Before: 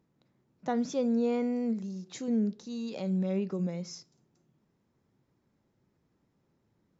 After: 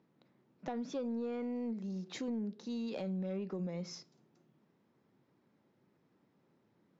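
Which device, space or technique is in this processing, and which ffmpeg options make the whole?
AM radio: -af "highpass=170,lowpass=4.2k,acompressor=threshold=-38dB:ratio=5,asoftclip=type=tanh:threshold=-32dB,volume=3dB"

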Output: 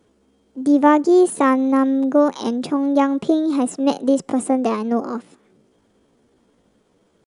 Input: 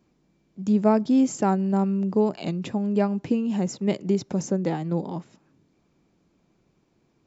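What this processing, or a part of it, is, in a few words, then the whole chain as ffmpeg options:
chipmunk voice: -af "asetrate=60591,aresample=44100,atempo=0.727827,volume=6dB"

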